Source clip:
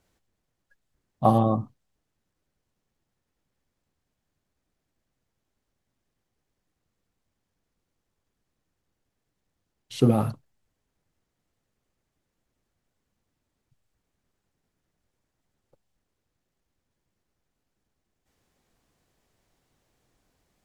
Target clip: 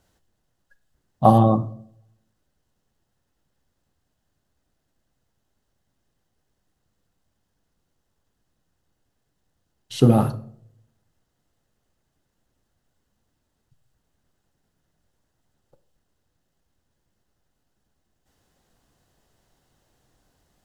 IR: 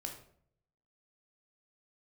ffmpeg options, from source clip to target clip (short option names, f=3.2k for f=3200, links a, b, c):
-filter_complex "[0:a]bandreject=f=2.3k:w=6.9,asplit=2[a][b];[1:a]atrim=start_sample=2205[c];[b][c]afir=irnorm=-1:irlink=0,volume=-6dB[d];[a][d]amix=inputs=2:normalize=0,volume=2.5dB"